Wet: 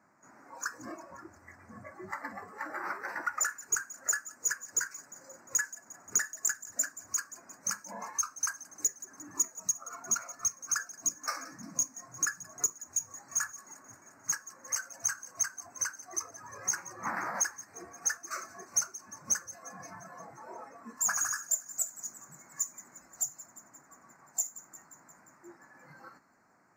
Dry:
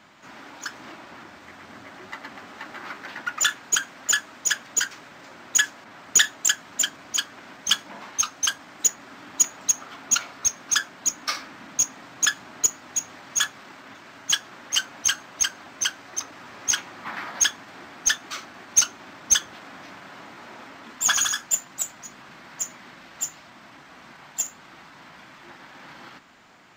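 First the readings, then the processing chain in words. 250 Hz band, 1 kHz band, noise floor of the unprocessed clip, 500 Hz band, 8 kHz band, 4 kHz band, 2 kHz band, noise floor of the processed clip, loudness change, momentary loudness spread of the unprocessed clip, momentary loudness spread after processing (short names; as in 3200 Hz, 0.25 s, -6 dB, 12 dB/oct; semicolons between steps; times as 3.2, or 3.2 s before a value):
-6.5 dB, -5.0 dB, -48 dBFS, -4.5 dB, -8.0 dB, -22.5 dB, -9.5 dB, -61 dBFS, -9.0 dB, 21 LU, 18 LU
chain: spectral noise reduction 15 dB; HPF 73 Hz; compressor 2.5:1, threshold -33 dBFS, peak gain reduction 14 dB; Butterworth band-stop 3300 Hz, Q 0.78; thin delay 0.176 s, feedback 66%, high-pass 2600 Hz, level -16.5 dB; gain +3 dB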